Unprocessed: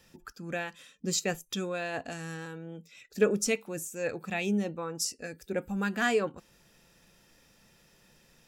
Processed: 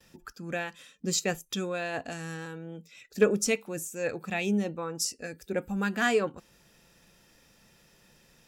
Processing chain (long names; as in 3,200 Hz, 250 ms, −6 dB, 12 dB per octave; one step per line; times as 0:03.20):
noise gate with hold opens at −55 dBFS
harmonic generator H 3 −27 dB, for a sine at −13.5 dBFS
level +2.5 dB